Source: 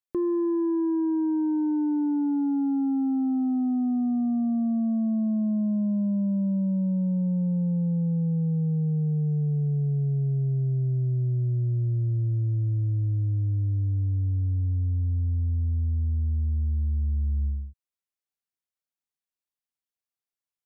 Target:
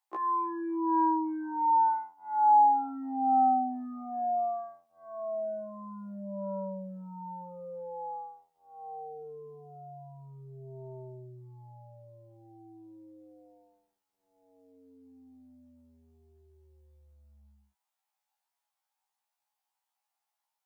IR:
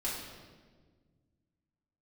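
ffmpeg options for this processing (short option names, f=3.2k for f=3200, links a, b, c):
-af "highpass=f=830:t=q:w=7.7,afftfilt=real='re*1.73*eq(mod(b,3),0)':imag='im*1.73*eq(mod(b,3),0)':win_size=2048:overlap=0.75,volume=6.5dB"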